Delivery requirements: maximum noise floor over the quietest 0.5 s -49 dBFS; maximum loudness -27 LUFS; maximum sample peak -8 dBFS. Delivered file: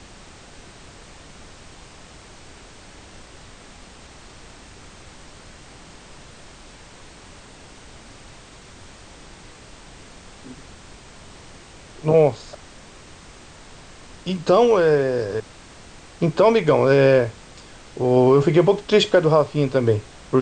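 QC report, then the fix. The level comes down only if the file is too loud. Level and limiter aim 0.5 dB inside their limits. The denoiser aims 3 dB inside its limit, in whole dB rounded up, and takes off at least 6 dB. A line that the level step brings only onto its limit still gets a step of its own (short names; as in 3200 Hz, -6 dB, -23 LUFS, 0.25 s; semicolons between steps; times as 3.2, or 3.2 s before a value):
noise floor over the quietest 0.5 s -44 dBFS: fail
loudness -18.0 LUFS: fail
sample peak -5.0 dBFS: fail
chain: gain -9.5 dB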